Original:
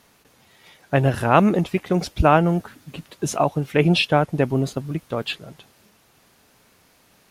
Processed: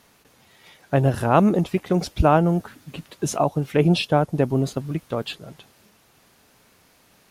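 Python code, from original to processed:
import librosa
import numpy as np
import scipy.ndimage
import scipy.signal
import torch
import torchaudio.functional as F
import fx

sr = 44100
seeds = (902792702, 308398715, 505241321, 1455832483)

y = fx.dynamic_eq(x, sr, hz=2200.0, q=0.92, threshold_db=-36.0, ratio=4.0, max_db=-8)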